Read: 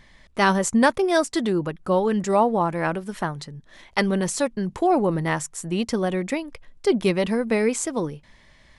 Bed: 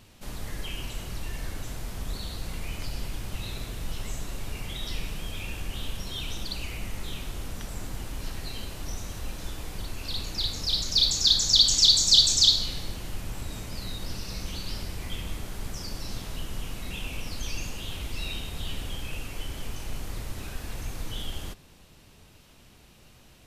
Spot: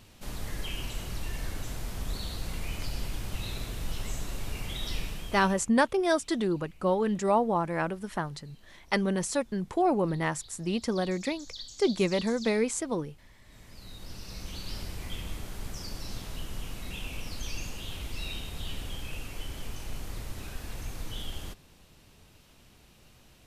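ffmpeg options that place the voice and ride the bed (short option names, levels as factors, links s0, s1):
-filter_complex "[0:a]adelay=4950,volume=0.531[s0];[1:a]volume=10.6,afade=t=out:st=4.97:d=0.73:silence=0.0668344,afade=t=in:st=13.42:d=1.38:silence=0.0891251[s1];[s0][s1]amix=inputs=2:normalize=0"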